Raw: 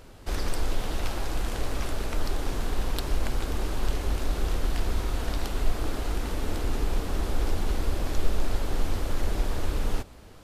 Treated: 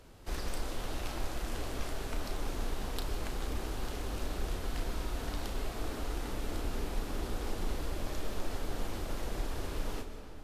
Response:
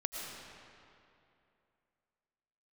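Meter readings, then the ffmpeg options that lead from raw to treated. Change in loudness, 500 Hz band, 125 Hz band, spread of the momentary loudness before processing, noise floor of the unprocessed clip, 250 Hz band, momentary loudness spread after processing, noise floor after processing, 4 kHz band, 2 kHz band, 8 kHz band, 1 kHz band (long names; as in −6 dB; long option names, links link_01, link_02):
−7.5 dB, −6.0 dB, −9.0 dB, 2 LU, −47 dBFS, −6.0 dB, 1 LU, −44 dBFS, −5.5 dB, −6.0 dB, −5.5 dB, −6.0 dB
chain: -filter_complex "[0:a]acrossover=split=140[link_01][link_02];[link_01]acompressor=threshold=-24dB:ratio=6[link_03];[link_03][link_02]amix=inputs=2:normalize=0,asplit=2[link_04][link_05];[1:a]atrim=start_sample=2205,adelay=34[link_06];[link_05][link_06]afir=irnorm=-1:irlink=0,volume=-7dB[link_07];[link_04][link_07]amix=inputs=2:normalize=0,volume=-7dB" -ar 44100 -c:a libvorbis -b:a 64k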